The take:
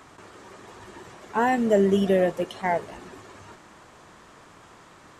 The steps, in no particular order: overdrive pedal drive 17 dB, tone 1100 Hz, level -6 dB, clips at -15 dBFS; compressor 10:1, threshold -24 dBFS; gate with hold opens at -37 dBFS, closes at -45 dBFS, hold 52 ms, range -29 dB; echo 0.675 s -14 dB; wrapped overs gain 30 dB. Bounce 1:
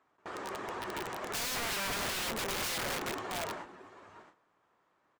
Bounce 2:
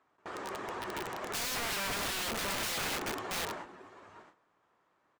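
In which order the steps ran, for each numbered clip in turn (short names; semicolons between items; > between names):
gate with hold > overdrive pedal > echo > compressor > wrapped overs; gate with hold > echo > overdrive pedal > compressor > wrapped overs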